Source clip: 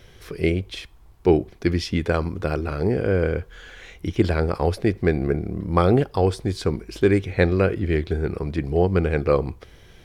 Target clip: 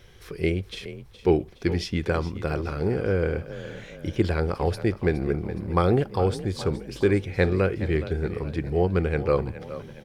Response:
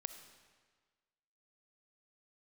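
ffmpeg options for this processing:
-filter_complex "[0:a]equalizer=f=260:t=o:w=0.33:g=-3,bandreject=f=640:w=12,asplit=5[a][b][c][d][e];[b]adelay=417,afreqshift=31,volume=-14dB[f];[c]adelay=834,afreqshift=62,volume=-20.6dB[g];[d]adelay=1251,afreqshift=93,volume=-27.1dB[h];[e]adelay=1668,afreqshift=124,volume=-33.7dB[i];[a][f][g][h][i]amix=inputs=5:normalize=0,volume=-3dB"

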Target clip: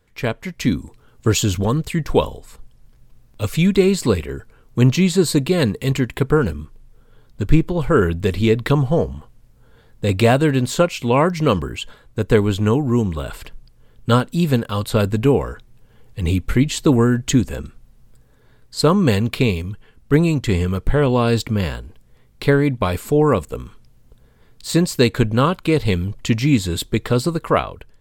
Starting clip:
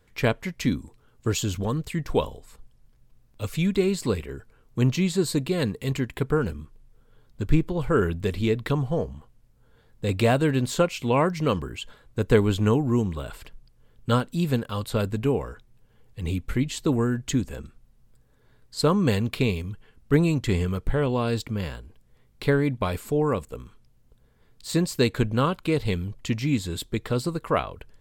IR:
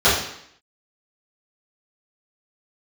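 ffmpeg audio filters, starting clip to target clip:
-af "dynaudnorm=f=160:g=7:m=9.5dB"

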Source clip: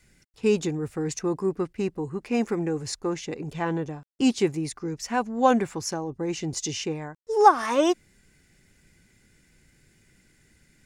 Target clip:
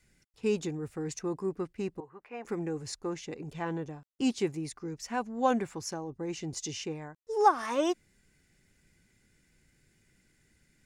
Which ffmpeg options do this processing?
-filter_complex "[0:a]asettb=1/sr,asplit=3[a][b][c];[a]atrim=end=2.004[d];[b]atrim=start=2:end=2.45,asetpts=PTS-STARTPTS,afade=t=in:d=0.004:c=qsin,afade=t=out:st=0.446:d=0.004:c=qsin,acrossover=split=550 2400:gain=0.112 1 0.0708[e][f][g];[e][f][g]amix=inputs=3:normalize=0[h];[c]atrim=start=2.446[i];[d][h]acrossfade=d=0.004:c1=hsin:c2=qsin[j];[j][i]acrossfade=d=0.004:c1=qsin:c2=hsin,volume=-7dB"

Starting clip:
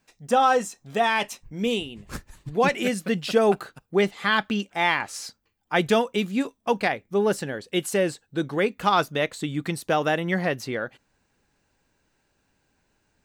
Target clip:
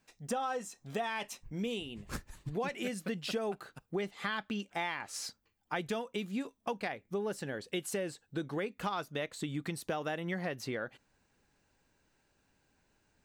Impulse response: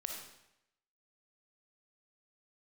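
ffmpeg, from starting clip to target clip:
-af "acompressor=threshold=-30dB:ratio=5,volume=-3.5dB"

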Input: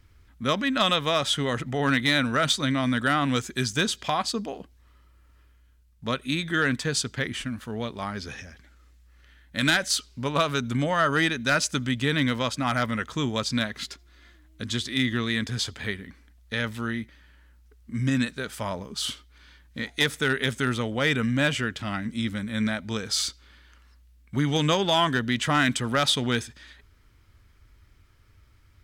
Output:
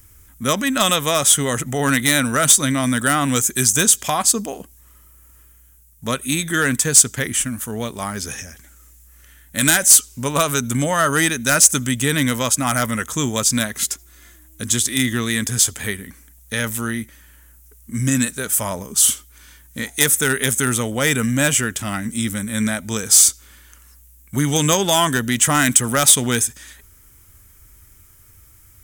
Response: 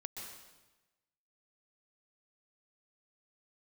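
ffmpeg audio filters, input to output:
-af "aexciter=amount=10:drive=5.4:freq=6.4k,acontrast=64,volume=-1dB"

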